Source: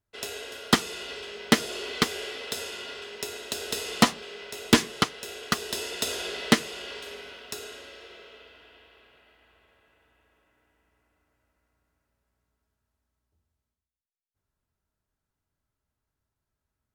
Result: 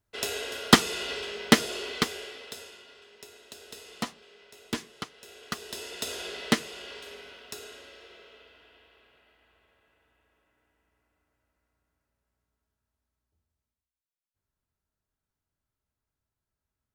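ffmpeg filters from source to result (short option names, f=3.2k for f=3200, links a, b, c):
-af "volume=14dB,afade=t=out:st=1.12:d=1.17:silence=0.316228,afade=t=out:st=2.29:d=0.56:silence=0.398107,afade=t=in:st=5.03:d=1.19:silence=0.316228"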